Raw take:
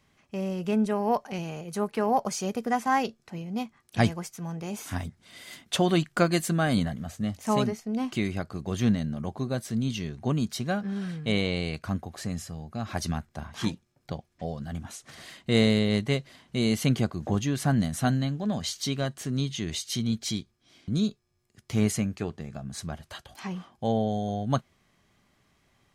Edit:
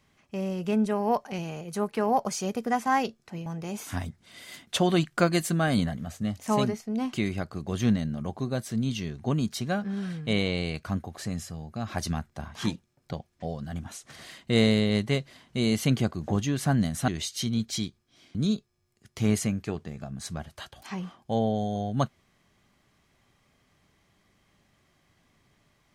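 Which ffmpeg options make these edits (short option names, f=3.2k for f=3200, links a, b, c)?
-filter_complex "[0:a]asplit=3[a][b][c];[a]atrim=end=3.462[d];[b]atrim=start=4.448:end=18.072[e];[c]atrim=start=19.608[f];[d][e]acrossfade=d=0.004:c1=hsin:c2=hsin[g];[g][f]acrossfade=d=0.004:c1=hsin:c2=hsin"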